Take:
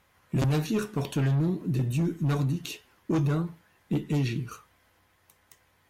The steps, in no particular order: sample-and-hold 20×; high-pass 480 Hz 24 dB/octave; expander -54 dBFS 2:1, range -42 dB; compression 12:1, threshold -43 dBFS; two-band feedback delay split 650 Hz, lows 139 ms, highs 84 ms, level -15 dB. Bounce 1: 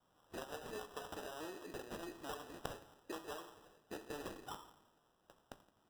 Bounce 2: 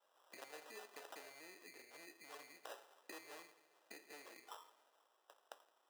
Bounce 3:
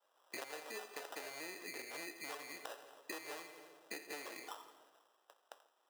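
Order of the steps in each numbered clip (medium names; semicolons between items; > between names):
expander > high-pass > compression > two-band feedback delay > sample-and-hold; compression > expander > two-band feedback delay > sample-and-hold > high-pass; sample-and-hold > two-band feedback delay > expander > high-pass > compression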